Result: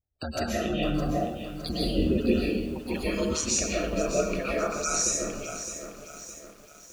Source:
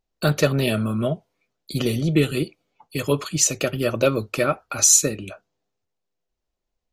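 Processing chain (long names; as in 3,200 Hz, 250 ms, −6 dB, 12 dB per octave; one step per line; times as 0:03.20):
source passing by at 0:02.20, 10 m/s, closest 5.5 metres
downward compressor 2.5 to 1, threshold −39 dBFS, peak gain reduction 16.5 dB
ring modulation 77 Hz
gate on every frequency bin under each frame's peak −20 dB strong
convolution reverb RT60 0.70 s, pre-delay 95 ms, DRR −6.5 dB
feedback echo at a low word length 612 ms, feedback 55%, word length 9 bits, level −10 dB
level +8 dB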